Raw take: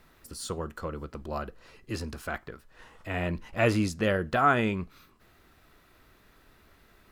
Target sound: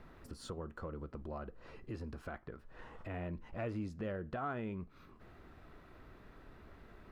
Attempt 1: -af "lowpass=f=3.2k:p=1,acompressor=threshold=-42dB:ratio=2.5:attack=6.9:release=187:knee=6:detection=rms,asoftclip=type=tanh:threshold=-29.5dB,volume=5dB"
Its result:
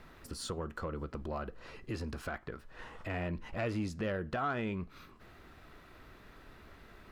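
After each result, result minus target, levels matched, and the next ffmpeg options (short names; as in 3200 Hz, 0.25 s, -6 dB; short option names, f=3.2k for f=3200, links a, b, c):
4000 Hz band +5.0 dB; compressor: peak gain reduction -4 dB
-af "lowpass=f=1k:p=1,acompressor=threshold=-42dB:ratio=2.5:attack=6.9:release=187:knee=6:detection=rms,asoftclip=type=tanh:threshold=-29.5dB,volume=5dB"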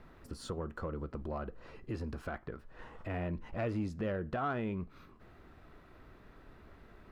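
compressor: peak gain reduction -5 dB
-af "lowpass=f=1k:p=1,acompressor=threshold=-50.5dB:ratio=2.5:attack=6.9:release=187:knee=6:detection=rms,asoftclip=type=tanh:threshold=-29.5dB,volume=5dB"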